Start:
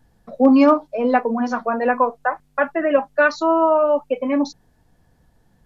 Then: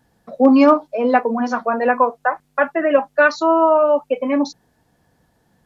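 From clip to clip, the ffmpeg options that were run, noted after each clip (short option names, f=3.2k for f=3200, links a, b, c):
-af "highpass=f=180:p=1,volume=2.5dB"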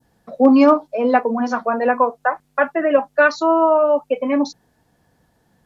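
-af "adynamicequalizer=threshold=0.0398:dfrequency=2100:dqfactor=0.77:tfrequency=2100:tqfactor=0.77:attack=5:release=100:ratio=0.375:range=2.5:mode=cutabove:tftype=bell"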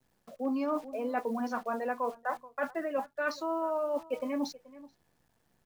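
-filter_complex "[0:a]acrusher=bits=8:dc=4:mix=0:aa=0.000001,asplit=2[a][b];[b]adelay=431.5,volume=-24dB,highshelf=f=4k:g=-9.71[c];[a][c]amix=inputs=2:normalize=0,areverse,acompressor=threshold=-21dB:ratio=6,areverse,volume=-8.5dB"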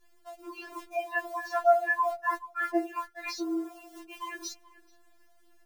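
-af "afftfilt=real='re*4*eq(mod(b,16),0)':imag='im*4*eq(mod(b,16),0)':win_size=2048:overlap=0.75,volume=8.5dB"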